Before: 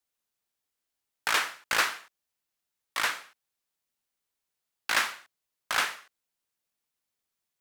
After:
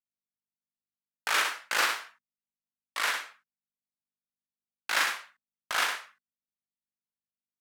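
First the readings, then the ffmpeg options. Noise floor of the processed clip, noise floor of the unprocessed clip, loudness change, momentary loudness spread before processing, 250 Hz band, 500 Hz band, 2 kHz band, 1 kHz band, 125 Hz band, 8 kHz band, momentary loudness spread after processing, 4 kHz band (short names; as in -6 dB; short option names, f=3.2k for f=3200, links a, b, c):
under -85 dBFS, under -85 dBFS, -0.5 dB, 14 LU, -2.5 dB, 0.0 dB, 0.0 dB, 0.0 dB, n/a, 0.0 dB, 13 LU, 0.0 dB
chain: -af "aeval=exprs='val(0)+0.001*(sin(2*PI*50*n/s)+sin(2*PI*2*50*n/s)/2+sin(2*PI*3*50*n/s)/3+sin(2*PI*4*50*n/s)/4+sin(2*PI*5*50*n/s)/5)':c=same,highpass=280,afftdn=nr=13:nf=-54,agate=range=-23dB:threshold=-52dB:ratio=16:detection=peak,aecho=1:1:40.82|105:0.891|0.501,volume=-3dB"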